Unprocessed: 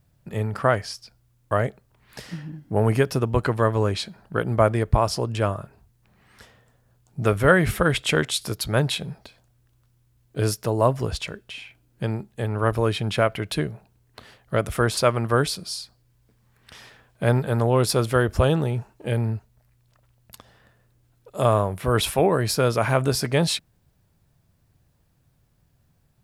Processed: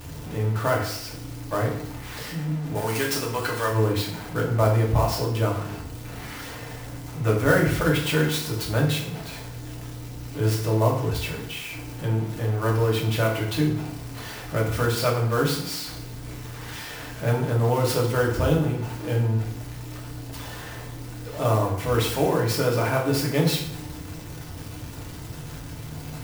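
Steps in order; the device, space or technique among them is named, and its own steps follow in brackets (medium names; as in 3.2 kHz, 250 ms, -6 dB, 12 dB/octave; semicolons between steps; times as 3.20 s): 2.75–3.71 s: tilt EQ +4.5 dB/octave; early CD player with a faulty converter (jump at every zero crossing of -28 dBFS; sampling jitter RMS 0.022 ms); FDN reverb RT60 0.67 s, low-frequency decay 1.25×, high-frequency decay 0.85×, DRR -3 dB; trim -8 dB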